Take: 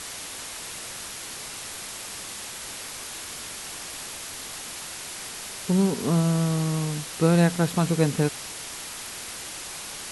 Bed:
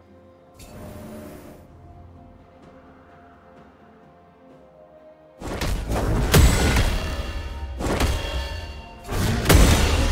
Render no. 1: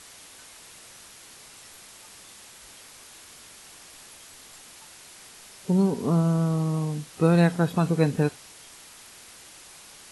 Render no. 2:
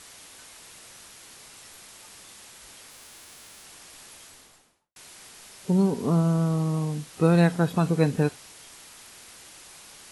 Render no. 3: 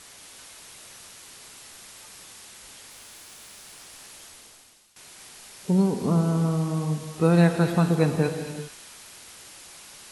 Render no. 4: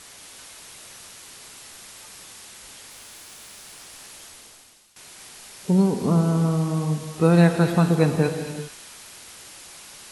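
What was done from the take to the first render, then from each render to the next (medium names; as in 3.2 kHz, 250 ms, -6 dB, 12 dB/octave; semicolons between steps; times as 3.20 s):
noise print and reduce 11 dB
2.90–3.63 s: formants flattened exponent 0.3; 4.20–4.96 s: studio fade out
feedback echo behind a high-pass 230 ms, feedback 37%, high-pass 2.4 kHz, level -5.5 dB; gated-style reverb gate 420 ms flat, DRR 7 dB
trim +2.5 dB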